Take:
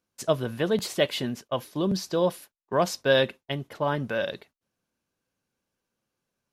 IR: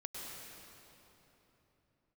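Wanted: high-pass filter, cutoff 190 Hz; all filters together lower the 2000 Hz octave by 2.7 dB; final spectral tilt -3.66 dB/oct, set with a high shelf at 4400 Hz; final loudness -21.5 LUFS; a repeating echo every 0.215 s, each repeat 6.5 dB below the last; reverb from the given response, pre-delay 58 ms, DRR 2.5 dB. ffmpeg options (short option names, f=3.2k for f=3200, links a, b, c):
-filter_complex "[0:a]highpass=190,equalizer=f=2k:t=o:g=-3,highshelf=f=4.4k:g=-3.5,aecho=1:1:215|430|645|860|1075|1290:0.473|0.222|0.105|0.0491|0.0231|0.0109,asplit=2[a][b];[1:a]atrim=start_sample=2205,adelay=58[c];[b][c]afir=irnorm=-1:irlink=0,volume=-2dB[d];[a][d]amix=inputs=2:normalize=0,volume=4.5dB"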